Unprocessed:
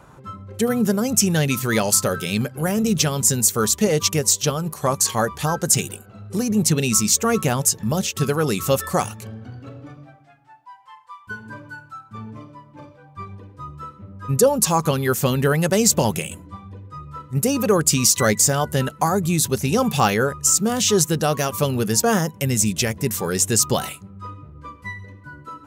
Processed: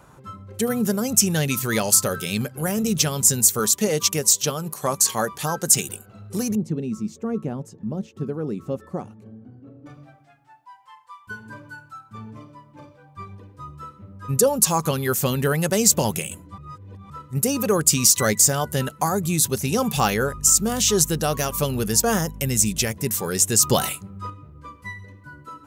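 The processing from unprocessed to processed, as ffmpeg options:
-filter_complex "[0:a]asettb=1/sr,asplit=3[s0][s1][s2];[s0]atrim=end=3.594[s3];[s1]atrim=start=3.59:end=5.89,asetpts=PTS-STARTPTS,afade=t=in:d=0.004:c=qsin,afade=t=out:st=2.296:d=0.004:c=qsin,highpass=140[s4];[s2]atrim=start=5.886[s5];[s3][s4]acrossfade=d=0.004:c1=hsin:c2=qsin[s6];[s6][s5]acrossfade=d=0.004:c1=qsin:c2=hsin,asettb=1/sr,asplit=3[s7][s8][s9];[s7]atrim=end=6.554[s10];[s8]atrim=start=6.55:end=9.86,asetpts=PTS-STARTPTS,afade=t=in:d=0.004:c=qsin,afade=t=out:st=3.306:d=0.004:c=qsin,bandpass=f=260:t=q:w=1.2[s11];[s9]atrim=start=9.856[s12];[s10][s11]acrossfade=d=0.004:c1=hsin:c2=qsin[s13];[s13][s12]acrossfade=d=0.004:c1=qsin:c2=hsin,asettb=1/sr,asplit=3[s14][s15][s16];[s14]atrim=end=19.964[s17];[s15]atrim=start=19.96:end=22.85,asetpts=PTS-STARTPTS,afade=t=in:d=0.004:c=qsin,afade=t=out:st=2.886:d=0.004:c=qsin,aeval=exprs='val(0)+0.0224*(sin(2*PI*50*n/s)+sin(2*PI*2*50*n/s)/2+sin(2*PI*3*50*n/s)/3+sin(2*PI*4*50*n/s)/4+sin(2*PI*5*50*n/s)/5)':c=same[s18];[s16]atrim=start=22.846[s19];[s17][s18]acrossfade=d=0.004:c1=hsin:c2=qsin[s20];[s20][s19]acrossfade=d=0.004:c1=qsin:c2=hsin,asettb=1/sr,asplit=3[s21][s22][s23];[s21]atrim=end=23.634[s24];[s22]atrim=start=23.63:end=24.3,asetpts=PTS-STARTPTS,afade=t=in:d=0.004:c=qsin,afade=t=out:st=0.666:d=0.004:c=qsin,acontrast=25[s25];[s23]atrim=start=24.296[s26];[s24][s25]acrossfade=d=0.004:c1=hsin:c2=qsin[s27];[s27][s26]acrossfade=d=0.004:c1=qsin:c2=hsin,asplit=3[s28][s29][s30];[s28]atrim=end=16.582[s31];[s29]atrim=start=16.578:end=17.102,asetpts=PTS-STARTPTS,areverse[s32];[s30]atrim=start=17.098[s33];[s31][s32]acrossfade=d=0.004:c1=hsin:c2=hsin[s34];[s34][s33]acrossfade=d=0.004:c1=hsin:c2=hsin,highshelf=f=6100:g=6.5,volume=0.708"

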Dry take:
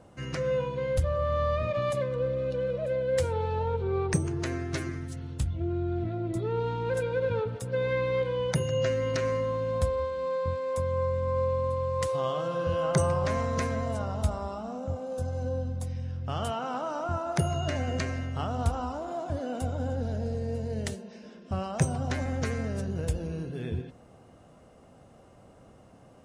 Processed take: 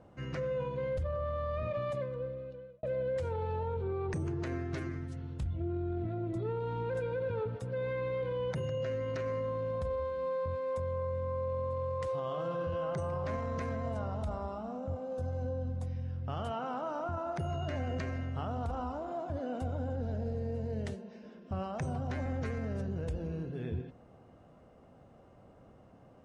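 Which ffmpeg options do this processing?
-filter_complex "[0:a]asplit=2[s0][s1];[s0]atrim=end=2.83,asetpts=PTS-STARTPTS,afade=t=out:st=1.66:d=1.17[s2];[s1]atrim=start=2.83,asetpts=PTS-STARTPTS,afade=t=in:d=0.004:c=hsin[s3];[s2][s3]concat=n=2:v=0:a=1,aemphasis=mode=reproduction:type=75fm,alimiter=limit=0.0631:level=0:latency=1:release=16,volume=0.631"

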